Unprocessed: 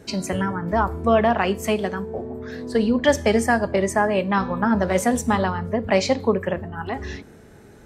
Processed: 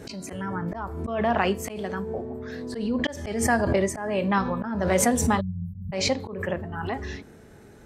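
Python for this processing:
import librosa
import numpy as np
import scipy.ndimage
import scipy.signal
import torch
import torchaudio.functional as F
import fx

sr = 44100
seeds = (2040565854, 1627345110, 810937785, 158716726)

y = fx.auto_swell(x, sr, attack_ms=292.0)
y = fx.spec_erase(y, sr, start_s=5.4, length_s=0.53, low_hz=210.0, high_hz=11000.0)
y = fx.pre_swell(y, sr, db_per_s=50.0)
y = F.gain(torch.from_numpy(y), -2.5).numpy()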